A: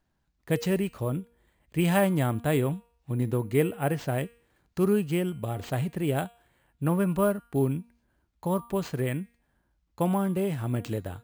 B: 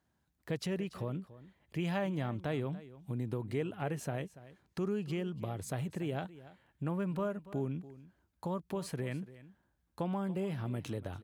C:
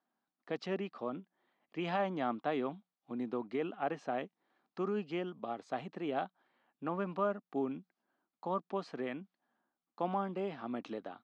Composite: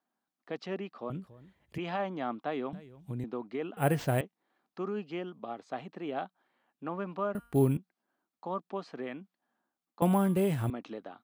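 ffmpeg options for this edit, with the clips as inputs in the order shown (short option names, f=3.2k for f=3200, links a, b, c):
-filter_complex "[1:a]asplit=2[a][b];[0:a]asplit=3[c][d][e];[2:a]asplit=6[f][g][h][i][j][k];[f]atrim=end=1.102[l];[a]atrim=start=1.098:end=1.782[m];[g]atrim=start=1.778:end=2.732[n];[b]atrim=start=2.728:end=3.242[o];[h]atrim=start=3.238:end=3.772[p];[c]atrim=start=3.768:end=4.212[q];[i]atrim=start=4.208:end=7.352[r];[d]atrim=start=7.348:end=7.772[s];[j]atrim=start=7.768:end=10.022[t];[e]atrim=start=10.018:end=10.702[u];[k]atrim=start=10.698[v];[l][m]acrossfade=d=0.004:c1=hsin:c2=hsin[w];[w][n]acrossfade=d=0.004:c1=hsin:c2=hsin[x];[x][o]acrossfade=d=0.004:c1=hsin:c2=hsin[y];[y][p]acrossfade=d=0.004:c1=hsin:c2=hsin[z];[z][q]acrossfade=d=0.004:c1=hsin:c2=hsin[aa];[aa][r]acrossfade=d=0.004:c1=hsin:c2=hsin[ab];[ab][s]acrossfade=d=0.004:c1=hsin:c2=hsin[ac];[ac][t]acrossfade=d=0.004:c1=hsin:c2=hsin[ad];[ad][u]acrossfade=d=0.004:c1=hsin:c2=hsin[ae];[ae][v]acrossfade=d=0.004:c1=hsin:c2=hsin"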